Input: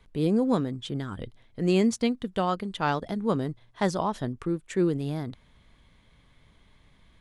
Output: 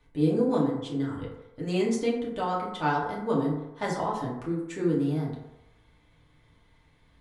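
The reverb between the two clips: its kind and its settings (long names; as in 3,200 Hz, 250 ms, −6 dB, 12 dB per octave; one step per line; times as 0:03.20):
feedback delay network reverb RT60 0.93 s, low-frequency decay 0.7×, high-frequency decay 0.4×, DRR −5.5 dB
level −7.5 dB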